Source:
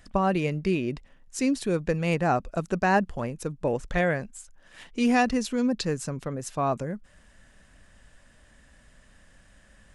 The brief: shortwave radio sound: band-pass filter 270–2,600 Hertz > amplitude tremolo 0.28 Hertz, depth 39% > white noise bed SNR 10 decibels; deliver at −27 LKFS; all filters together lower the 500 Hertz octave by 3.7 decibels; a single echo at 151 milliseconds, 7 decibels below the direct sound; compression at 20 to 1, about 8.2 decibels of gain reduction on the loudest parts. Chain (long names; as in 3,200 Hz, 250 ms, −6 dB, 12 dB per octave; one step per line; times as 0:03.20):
parametric band 500 Hz −4 dB
downward compressor 20 to 1, threshold −27 dBFS
band-pass filter 270–2,600 Hz
single-tap delay 151 ms −7 dB
amplitude tremolo 0.28 Hz, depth 39%
white noise bed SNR 10 dB
level +11.5 dB